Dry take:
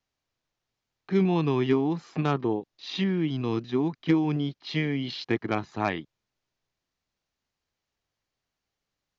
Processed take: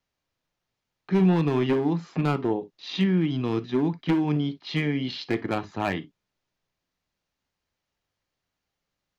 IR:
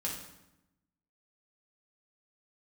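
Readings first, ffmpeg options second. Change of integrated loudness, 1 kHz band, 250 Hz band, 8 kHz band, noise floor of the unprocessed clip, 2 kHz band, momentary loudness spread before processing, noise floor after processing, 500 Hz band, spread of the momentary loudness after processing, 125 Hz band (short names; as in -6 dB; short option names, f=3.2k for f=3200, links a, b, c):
+2.0 dB, +0.5 dB, +2.0 dB, n/a, under -85 dBFS, +1.0 dB, 6 LU, -84 dBFS, +1.0 dB, 8 LU, +2.5 dB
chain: -filter_complex "[0:a]asoftclip=type=hard:threshold=-19dB,asplit=2[a][b];[1:a]atrim=start_sample=2205,atrim=end_sample=3087,lowpass=4.6k[c];[b][c]afir=irnorm=-1:irlink=0,volume=-9dB[d];[a][d]amix=inputs=2:normalize=0"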